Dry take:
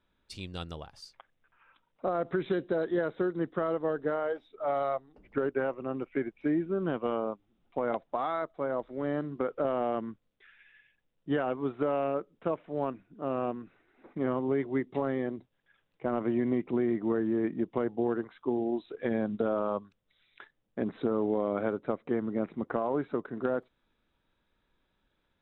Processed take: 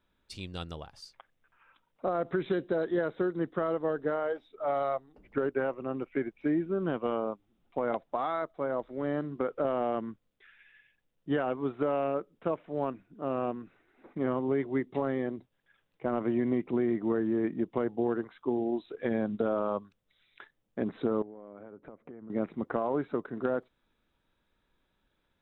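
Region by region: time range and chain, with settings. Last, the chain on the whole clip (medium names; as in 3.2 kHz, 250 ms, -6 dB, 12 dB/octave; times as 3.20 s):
21.22–22.30 s: compression 8:1, threshold -42 dBFS + distance through air 500 m
whole clip: none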